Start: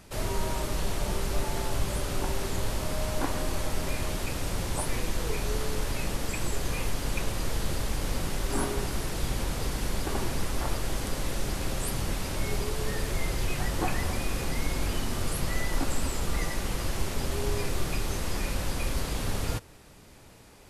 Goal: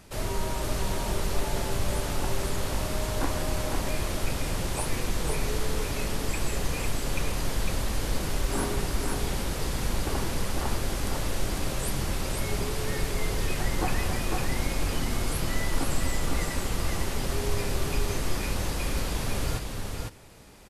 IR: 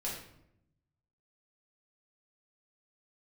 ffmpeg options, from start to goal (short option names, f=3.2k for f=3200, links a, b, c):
-af "aecho=1:1:503:0.631"